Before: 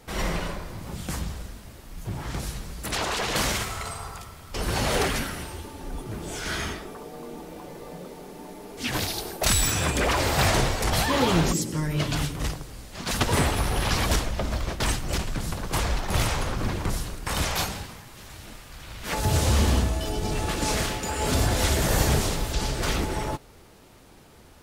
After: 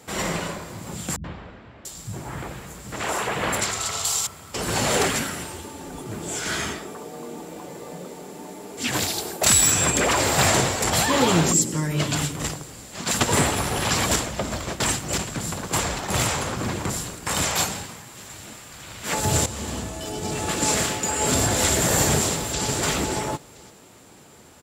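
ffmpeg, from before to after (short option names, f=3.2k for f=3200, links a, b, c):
-filter_complex "[0:a]asettb=1/sr,asplit=3[a][b][c];[a]atrim=end=1.164[d];[b]atrim=start=1.16:end=4.27,asetpts=PTS-STARTPTS,afade=t=in:d=0.004:c=qsin,afade=t=out:st=3.106:d=0.004:c=qsin,acrossover=split=210|3100[e][f][g];[f]adelay=80[h];[g]adelay=690[i];[e][h][i]amix=inputs=3:normalize=0,atrim=end_sample=137151[j];[c]atrim=start=4.266[k];[d][j]acrossfade=d=0.004:c1=hsin:c2=qsin[l];[l][k]acrossfade=d=0.004:c1=qsin:c2=hsin,asplit=2[m][n];[n]afade=t=in:st=22.17:d=0.01,afade=t=out:st=22.68:d=0.01,aecho=0:1:510|1020|1530:0.446684|0.0670025|0.0100504[o];[m][o]amix=inputs=2:normalize=0,asplit=2[p][q];[p]atrim=end=19.46,asetpts=PTS-STARTPTS,afade=t=out:st=19.456:d=0.004:c=hsin:silence=0.188365[r];[q]atrim=start=19.46,asetpts=PTS-STARTPTS,afade=t=in:d=1.1:silence=0.188365[s];[r][s]concat=n=2:v=0:a=1,highpass=110,equalizer=f=7.4k:w=7.9:g=14,volume=3dB"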